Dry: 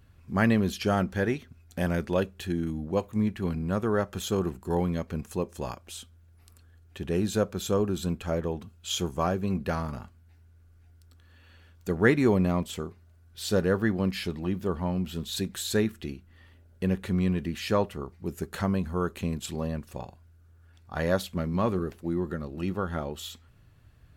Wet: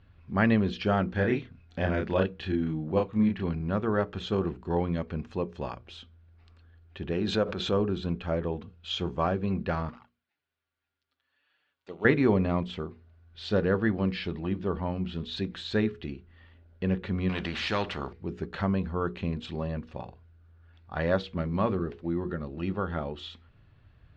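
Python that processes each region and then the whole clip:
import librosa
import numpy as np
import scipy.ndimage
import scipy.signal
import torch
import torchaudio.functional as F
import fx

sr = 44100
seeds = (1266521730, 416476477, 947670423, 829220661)

y = fx.chain(x, sr, fx.lowpass(hz=10000.0, slope=12),
    fx.doubler(ms=32.0, db=-3.5), at=(1.12, 3.43))
y = fx.chain(y, sr, fx.low_shelf(hz=140.0, db=-8.0),
    fx.pre_swell(db_per_s=43.0), at=(7.12, 7.73))
y = fx.chain(y, sr, fx.law_mismatch(coded='A'),
    fx.highpass(hz=1100.0, slope=6),
    fx.env_flanger(rest_ms=8.3, full_db=-42.5), at=(9.89, 12.05))
y = fx.chain(y, sr, fx.high_shelf(hz=11000.0, db=12.0),
    fx.spectral_comp(ratio=2.0), at=(17.29, 18.13))
y = scipy.signal.sosfilt(scipy.signal.butter(4, 4000.0, 'lowpass', fs=sr, output='sos'), y)
y = fx.hum_notches(y, sr, base_hz=60, count=8)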